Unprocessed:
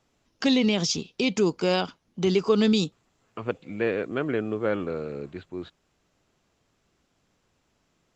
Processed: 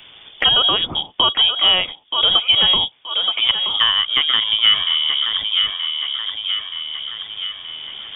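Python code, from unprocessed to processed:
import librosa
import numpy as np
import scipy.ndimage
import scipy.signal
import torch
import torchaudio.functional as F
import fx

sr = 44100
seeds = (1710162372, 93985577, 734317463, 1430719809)

p1 = fx.peak_eq(x, sr, hz=530.0, db=7.0, octaves=0.2)
p2 = fx.rider(p1, sr, range_db=4, speed_s=2.0)
p3 = p1 + (p2 * librosa.db_to_amplitude(2.0))
p4 = fx.dynamic_eq(p3, sr, hz=2300.0, q=1.8, threshold_db=-37.0, ratio=4.0, max_db=6)
p5 = fx.freq_invert(p4, sr, carrier_hz=3500)
p6 = fx.echo_thinned(p5, sr, ms=926, feedback_pct=31, hz=490.0, wet_db=-10)
y = fx.band_squash(p6, sr, depth_pct=70)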